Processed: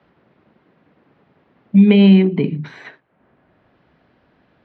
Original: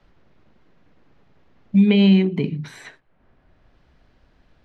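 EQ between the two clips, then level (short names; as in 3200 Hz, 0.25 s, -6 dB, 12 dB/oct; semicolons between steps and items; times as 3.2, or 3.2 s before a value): HPF 150 Hz 12 dB/oct; air absorption 260 m; +6.0 dB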